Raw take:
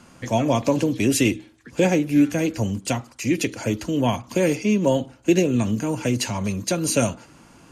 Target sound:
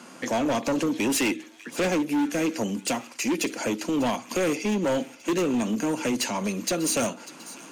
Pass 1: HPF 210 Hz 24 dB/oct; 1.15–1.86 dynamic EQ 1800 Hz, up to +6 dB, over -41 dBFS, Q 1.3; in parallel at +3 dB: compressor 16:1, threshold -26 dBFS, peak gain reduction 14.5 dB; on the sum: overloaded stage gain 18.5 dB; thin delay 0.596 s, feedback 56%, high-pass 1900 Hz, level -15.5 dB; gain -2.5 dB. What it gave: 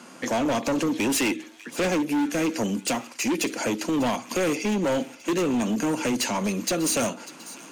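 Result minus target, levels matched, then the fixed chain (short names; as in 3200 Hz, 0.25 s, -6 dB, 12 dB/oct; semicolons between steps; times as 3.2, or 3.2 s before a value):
compressor: peak gain reduction -6.5 dB
HPF 210 Hz 24 dB/oct; 1.15–1.86 dynamic EQ 1800 Hz, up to +6 dB, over -41 dBFS, Q 1.3; in parallel at +3 dB: compressor 16:1, threshold -33 dBFS, peak gain reduction 21 dB; on the sum: overloaded stage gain 18.5 dB; thin delay 0.596 s, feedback 56%, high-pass 1900 Hz, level -15.5 dB; gain -2.5 dB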